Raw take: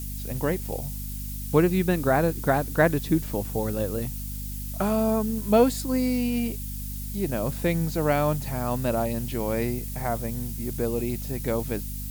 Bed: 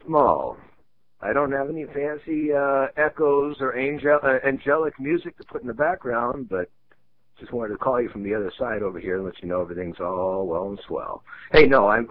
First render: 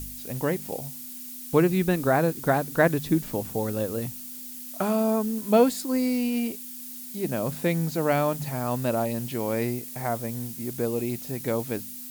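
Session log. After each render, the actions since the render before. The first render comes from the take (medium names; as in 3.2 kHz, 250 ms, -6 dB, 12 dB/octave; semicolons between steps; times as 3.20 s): de-hum 50 Hz, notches 4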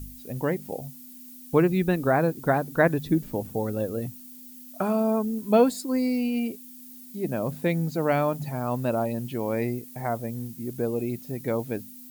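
noise reduction 10 dB, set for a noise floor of -39 dBFS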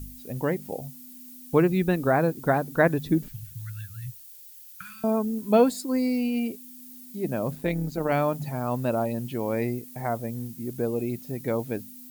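3.28–5.04 s: Chebyshev band-stop 140–1500 Hz, order 4; 7.55–8.12 s: AM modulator 130 Hz, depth 35%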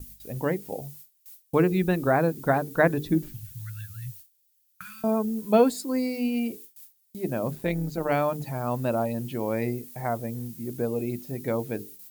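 hum notches 50/100/150/200/250/300/350/400/450 Hz; gate with hold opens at -34 dBFS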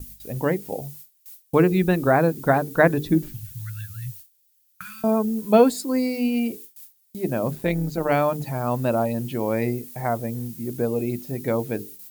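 trim +4 dB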